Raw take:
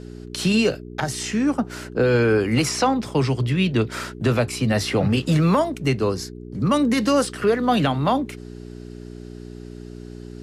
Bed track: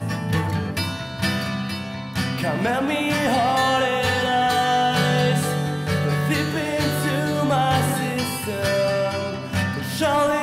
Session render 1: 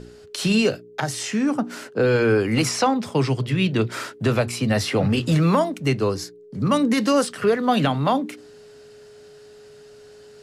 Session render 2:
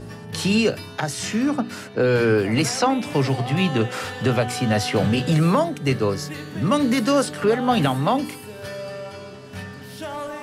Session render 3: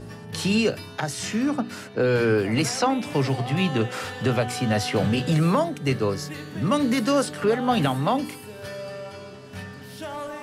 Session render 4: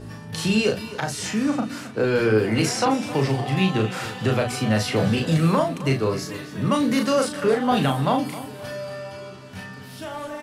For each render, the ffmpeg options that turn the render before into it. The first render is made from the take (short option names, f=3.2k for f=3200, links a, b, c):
-af "bandreject=f=60:t=h:w=4,bandreject=f=120:t=h:w=4,bandreject=f=180:t=h:w=4,bandreject=f=240:t=h:w=4,bandreject=f=300:t=h:w=4,bandreject=f=360:t=h:w=4"
-filter_complex "[1:a]volume=-12dB[a];[0:a][a]amix=inputs=2:normalize=0"
-af "volume=-2.5dB"
-filter_complex "[0:a]asplit=2[a][b];[b]adelay=37,volume=-5dB[c];[a][c]amix=inputs=2:normalize=0,aecho=1:1:266|532|798:0.168|0.0604|0.0218"